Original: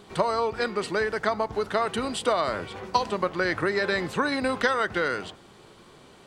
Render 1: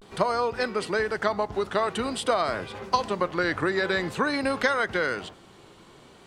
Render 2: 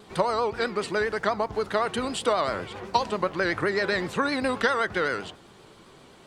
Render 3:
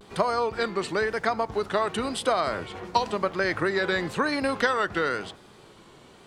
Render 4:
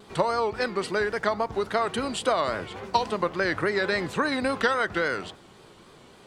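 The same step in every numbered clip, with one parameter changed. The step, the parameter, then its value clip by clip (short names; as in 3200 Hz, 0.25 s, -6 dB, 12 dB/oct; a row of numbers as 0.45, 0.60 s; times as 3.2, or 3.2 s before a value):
vibrato, rate: 0.48, 7.7, 0.97, 3.6 Hz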